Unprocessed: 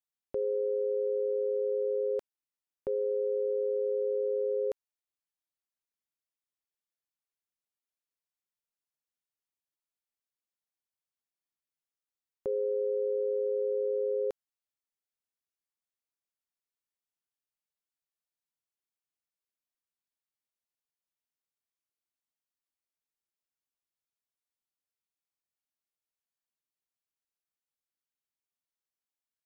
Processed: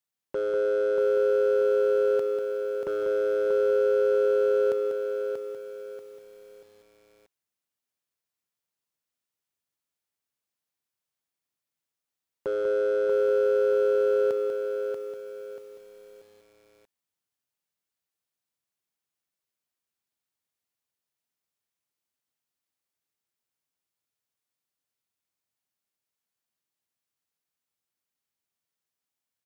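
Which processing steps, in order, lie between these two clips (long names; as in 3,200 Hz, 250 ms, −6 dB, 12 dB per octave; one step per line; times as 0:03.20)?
high-pass filter 81 Hz 24 dB per octave
low-shelf EQ 130 Hz +6 dB
gain into a clipping stage and back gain 28.5 dB
on a send: single-tap delay 193 ms −7.5 dB
on the sum: feedback echo at a low word length 636 ms, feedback 35%, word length 10 bits, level −6 dB
level +4.5 dB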